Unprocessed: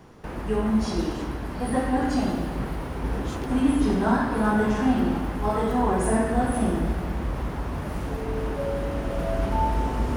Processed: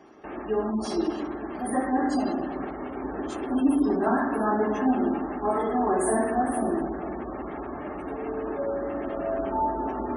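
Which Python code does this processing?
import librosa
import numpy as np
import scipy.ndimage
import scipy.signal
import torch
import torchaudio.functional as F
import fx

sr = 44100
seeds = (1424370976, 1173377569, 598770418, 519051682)

p1 = x + fx.echo_tape(x, sr, ms=451, feedback_pct=67, wet_db=-14.0, lp_hz=1200.0, drive_db=9.0, wow_cents=28, dry=0)
p2 = fx.dynamic_eq(p1, sr, hz=8600.0, q=2.5, threshold_db=-58.0, ratio=4.0, max_db=6)
p3 = fx.spec_gate(p2, sr, threshold_db=-30, keep='strong')
p4 = fx.low_shelf_res(p3, sr, hz=210.0, db=-14.0, q=1.5)
y = fx.notch_comb(p4, sr, f0_hz=490.0)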